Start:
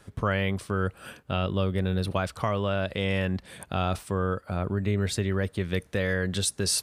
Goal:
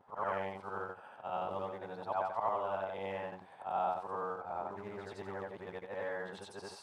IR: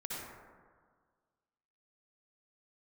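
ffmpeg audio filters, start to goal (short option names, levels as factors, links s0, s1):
-af "afftfilt=real='re':imag='-im':win_size=8192:overlap=0.75,acrusher=bits=5:mode=log:mix=0:aa=0.000001,bandpass=f=850:t=q:w=5.8:csg=0,volume=3.16"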